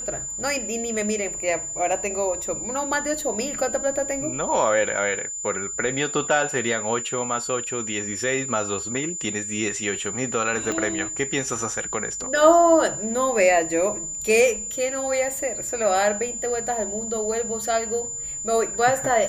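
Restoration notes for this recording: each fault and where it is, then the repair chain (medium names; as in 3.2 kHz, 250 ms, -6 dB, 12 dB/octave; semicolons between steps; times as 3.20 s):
whine 7.1 kHz -29 dBFS
10.72 s: pop -14 dBFS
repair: de-click; band-stop 7.1 kHz, Q 30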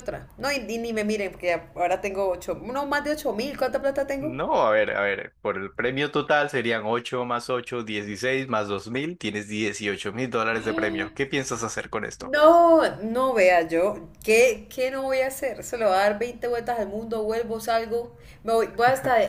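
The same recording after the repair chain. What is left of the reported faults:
10.72 s: pop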